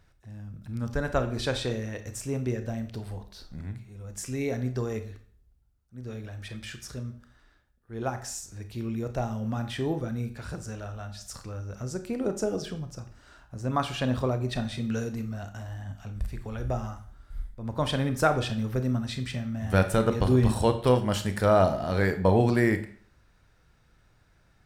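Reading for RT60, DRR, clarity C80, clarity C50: 0.50 s, 8.0 dB, 15.5 dB, 11.5 dB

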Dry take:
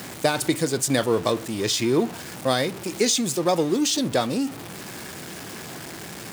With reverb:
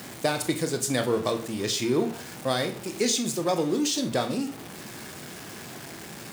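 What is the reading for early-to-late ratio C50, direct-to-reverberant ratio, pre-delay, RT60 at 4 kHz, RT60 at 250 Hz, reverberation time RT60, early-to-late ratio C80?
12.0 dB, 7.0 dB, 22 ms, 0.35 s, 0.45 s, 0.40 s, 16.5 dB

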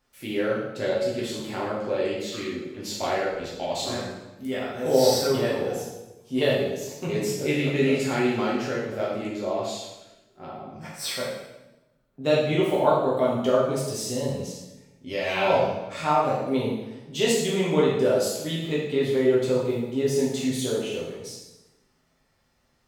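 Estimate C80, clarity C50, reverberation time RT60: 4.0 dB, 1.0 dB, 1.0 s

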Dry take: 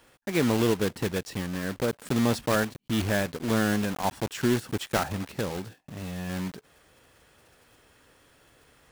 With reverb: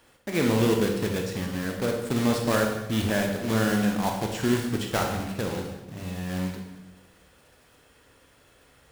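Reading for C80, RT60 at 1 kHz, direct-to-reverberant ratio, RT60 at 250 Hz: 6.5 dB, 0.95 s, 2.0 dB, 1.4 s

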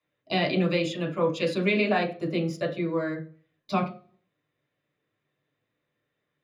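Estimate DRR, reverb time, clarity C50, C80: 0.0 dB, 0.40 s, 12.5 dB, 17.5 dB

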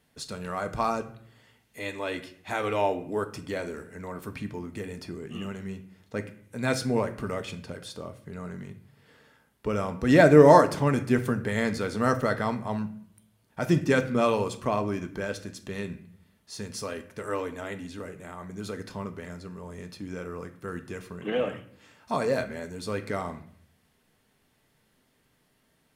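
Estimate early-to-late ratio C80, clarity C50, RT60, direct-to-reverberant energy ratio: 17.0 dB, 13.5 dB, 0.60 s, 7.0 dB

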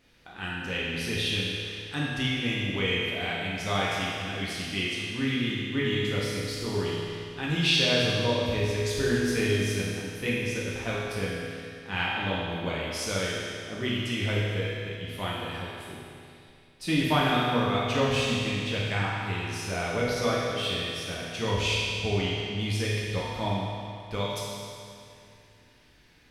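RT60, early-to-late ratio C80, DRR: 2.5 s, −0.5 dB, −6.5 dB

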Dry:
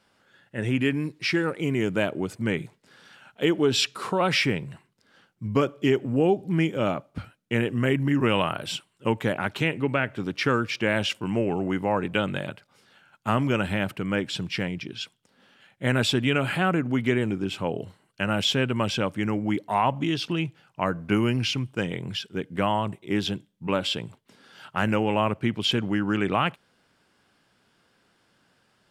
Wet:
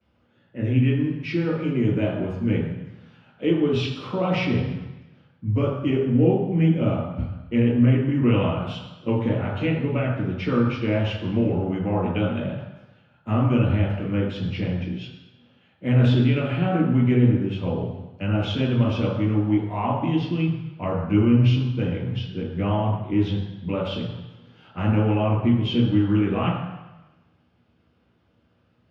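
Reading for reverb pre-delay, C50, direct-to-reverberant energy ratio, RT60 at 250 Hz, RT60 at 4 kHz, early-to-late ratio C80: 3 ms, 2.0 dB, −13.5 dB, 1.0 s, 1.1 s, 5.0 dB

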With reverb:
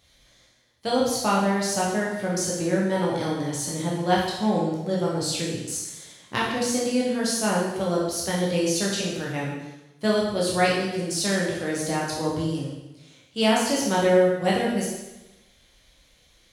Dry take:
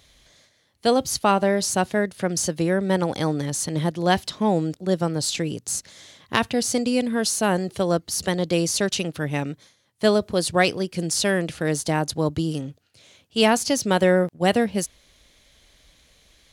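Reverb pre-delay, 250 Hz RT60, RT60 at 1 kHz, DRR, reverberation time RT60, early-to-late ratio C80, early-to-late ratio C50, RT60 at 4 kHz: 7 ms, 1.0 s, 0.95 s, −5.0 dB, 1.0 s, 4.0 dB, 1.5 dB, 0.95 s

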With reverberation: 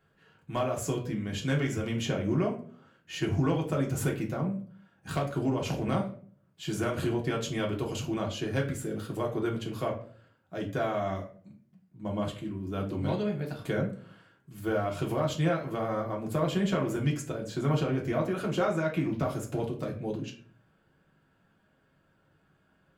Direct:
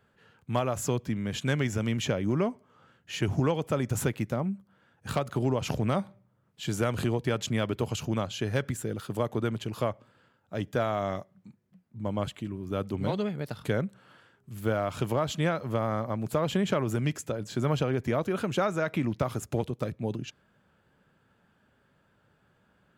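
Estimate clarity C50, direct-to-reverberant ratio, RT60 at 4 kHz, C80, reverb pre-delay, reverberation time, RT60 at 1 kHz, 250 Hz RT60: 10.5 dB, −1.5 dB, 0.30 s, 14.0 dB, 3 ms, 0.50 s, 0.40 s, 0.65 s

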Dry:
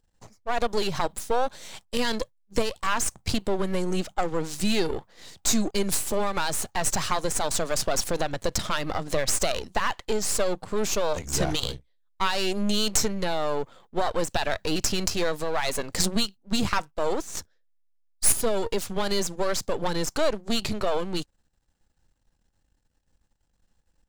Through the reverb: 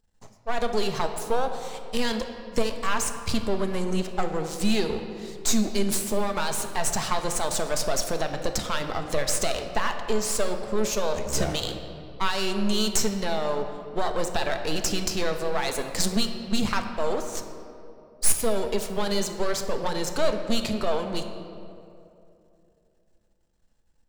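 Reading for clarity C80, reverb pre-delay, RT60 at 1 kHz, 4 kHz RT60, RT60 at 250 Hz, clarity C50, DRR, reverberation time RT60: 8.5 dB, 4 ms, 2.4 s, 1.5 s, 3.0 s, 7.5 dB, 5.5 dB, 2.7 s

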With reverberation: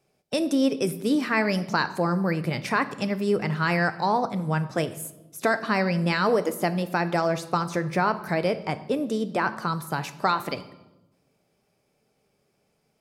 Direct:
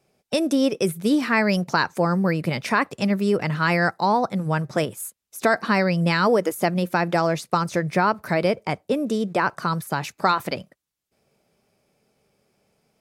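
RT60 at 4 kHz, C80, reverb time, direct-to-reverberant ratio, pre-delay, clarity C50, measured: 0.80 s, 17.0 dB, 1.0 s, 11.0 dB, 3 ms, 14.5 dB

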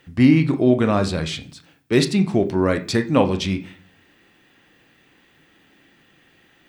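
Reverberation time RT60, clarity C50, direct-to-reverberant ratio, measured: 0.45 s, 14.5 dB, 7.5 dB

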